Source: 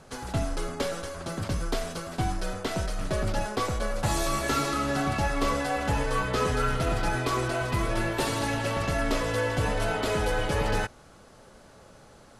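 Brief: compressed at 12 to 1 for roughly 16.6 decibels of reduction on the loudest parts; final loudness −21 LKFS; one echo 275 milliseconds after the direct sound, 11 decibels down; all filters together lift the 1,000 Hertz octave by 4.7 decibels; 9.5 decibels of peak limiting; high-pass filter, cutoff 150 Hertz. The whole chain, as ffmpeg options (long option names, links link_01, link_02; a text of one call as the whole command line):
ffmpeg -i in.wav -af "highpass=150,equalizer=frequency=1000:width_type=o:gain=6,acompressor=threshold=-38dB:ratio=12,alimiter=level_in=11dB:limit=-24dB:level=0:latency=1,volume=-11dB,aecho=1:1:275:0.282,volume=23dB" out.wav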